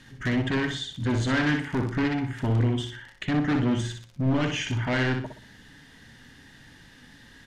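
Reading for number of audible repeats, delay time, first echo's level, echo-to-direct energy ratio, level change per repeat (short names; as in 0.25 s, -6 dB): 3, 61 ms, -6.0 dB, -5.5 dB, -10.0 dB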